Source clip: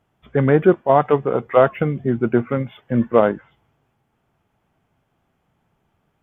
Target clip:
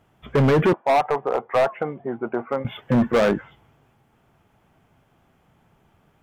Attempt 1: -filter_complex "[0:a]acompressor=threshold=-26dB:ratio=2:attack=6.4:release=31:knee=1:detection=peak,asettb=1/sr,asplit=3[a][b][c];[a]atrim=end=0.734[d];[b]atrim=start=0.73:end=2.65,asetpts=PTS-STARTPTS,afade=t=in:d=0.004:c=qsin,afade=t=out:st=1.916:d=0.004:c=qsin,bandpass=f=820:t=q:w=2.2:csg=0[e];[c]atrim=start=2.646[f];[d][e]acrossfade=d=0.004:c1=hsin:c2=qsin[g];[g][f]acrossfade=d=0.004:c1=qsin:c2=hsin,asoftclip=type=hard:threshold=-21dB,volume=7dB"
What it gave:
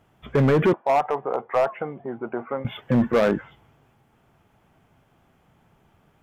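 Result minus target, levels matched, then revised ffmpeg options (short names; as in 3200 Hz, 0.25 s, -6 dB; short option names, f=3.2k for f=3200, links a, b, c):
compressor: peak gain reduction +4 dB
-filter_complex "[0:a]acompressor=threshold=-18.5dB:ratio=2:attack=6.4:release=31:knee=1:detection=peak,asettb=1/sr,asplit=3[a][b][c];[a]atrim=end=0.734[d];[b]atrim=start=0.73:end=2.65,asetpts=PTS-STARTPTS,afade=t=in:d=0.004:c=qsin,afade=t=out:st=1.916:d=0.004:c=qsin,bandpass=f=820:t=q:w=2.2:csg=0[e];[c]atrim=start=2.646[f];[d][e]acrossfade=d=0.004:c1=hsin:c2=qsin[g];[g][f]acrossfade=d=0.004:c1=qsin:c2=hsin,asoftclip=type=hard:threshold=-21dB,volume=7dB"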